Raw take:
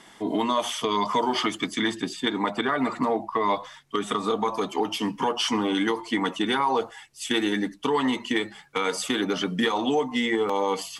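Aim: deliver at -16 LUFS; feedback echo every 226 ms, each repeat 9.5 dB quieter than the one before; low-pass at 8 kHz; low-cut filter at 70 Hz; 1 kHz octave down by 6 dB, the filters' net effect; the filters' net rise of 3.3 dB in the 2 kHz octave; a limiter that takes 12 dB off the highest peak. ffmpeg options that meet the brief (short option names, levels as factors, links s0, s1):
-af "highpass=70,lowpass=8000,equalizer=f=1000:t=o:g=-8.5,equalizer=f=2000:t=o:g=6,alimiter=limit=0.0944:level=0:latency=1,aecho=1:1:226|452|678|904:0.335|0.111|0.0365|0.012,volume=5.01"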